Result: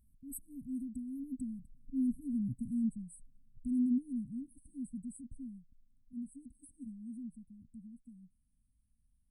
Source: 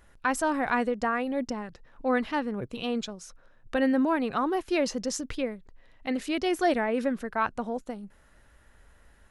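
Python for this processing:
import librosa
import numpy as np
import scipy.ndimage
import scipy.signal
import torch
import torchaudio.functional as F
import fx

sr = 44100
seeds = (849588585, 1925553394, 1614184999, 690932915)

y = fx.doppler_pass(x, sr, speed_mps=24, closest_m=24.0, pass_at_s=2.44)
y = fx.brickwall_bandstop(y, sr, low_hz=280.0, high_hz=7900.0)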